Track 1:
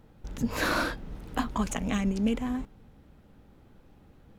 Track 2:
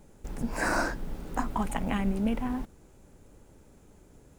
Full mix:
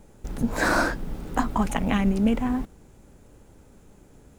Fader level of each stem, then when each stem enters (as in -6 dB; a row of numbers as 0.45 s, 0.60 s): -3.0 dB, +2.5 dB; 0.00 s, 0.00 s